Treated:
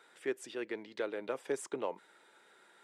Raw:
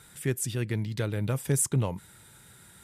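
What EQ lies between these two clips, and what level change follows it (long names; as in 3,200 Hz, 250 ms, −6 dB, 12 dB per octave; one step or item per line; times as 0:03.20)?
high-pass filter 360 Hz 24 dB per octave
head-to-tape spacing loss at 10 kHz 23 dB
0.0 dB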